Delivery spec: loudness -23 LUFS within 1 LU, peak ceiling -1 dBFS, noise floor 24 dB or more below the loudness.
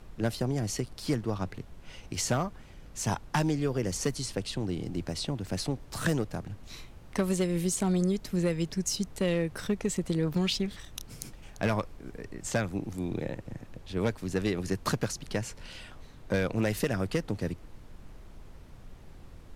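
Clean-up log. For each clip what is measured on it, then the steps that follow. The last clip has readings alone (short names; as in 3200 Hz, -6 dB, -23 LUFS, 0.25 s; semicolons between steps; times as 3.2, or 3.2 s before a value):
clipped 0.3%; flat tops at -19.0 dBFS; noise floor -50 dBFS; noise floor target -56 dBFS; loudness -31.5 LUFS; peak -19.0 dBFS; loudness target -23.0 LUFS
-> clip repair -19 dBFS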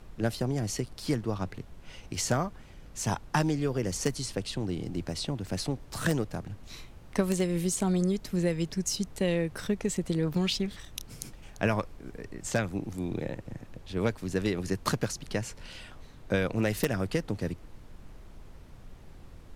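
clipped 0.0%; noise floor -50 dBFS; noise floor target -55 dBFS
-> noise print and reduce 6 dB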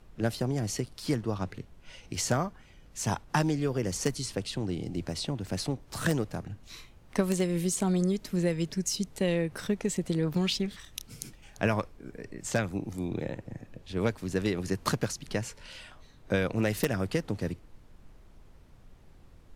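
noise floor -55 dBFS; loudness -31.0 LUFS; peak -10.0 dBFS; loudness target -23.0 LUFS
-> gain +8 dB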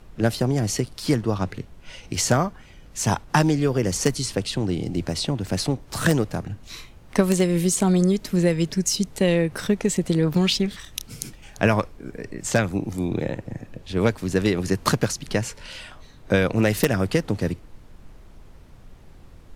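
loudness -23.0 LUFS; peak -2.0 dBFS; noise floor -47 dBFS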